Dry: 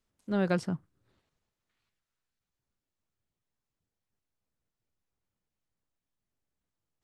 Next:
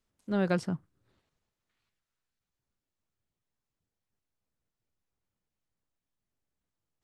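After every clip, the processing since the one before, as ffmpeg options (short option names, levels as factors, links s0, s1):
-af anull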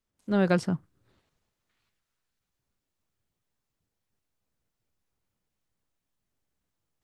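-af "dynaudnorm=f=130:g=3:m=2.82,volume=0.596"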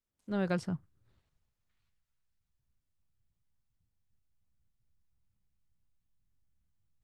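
-af "asubboost=boost=7.5:cutoff=150,volume=0.398"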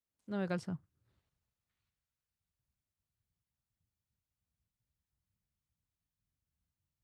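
-af "highpass=51,volume=0.596"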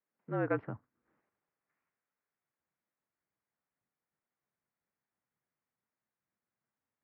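-af "highpass=f=250:t=q:w=0.5412,highpass=f=250:t=q:w=1.307,lowpass=f=2200:t=q:w=0.5176,lowpass=f=2200:t=q:w=0.7071,lowpass=f=2200:t=q:w=1.932,afreqshift=-54,volume=2.24"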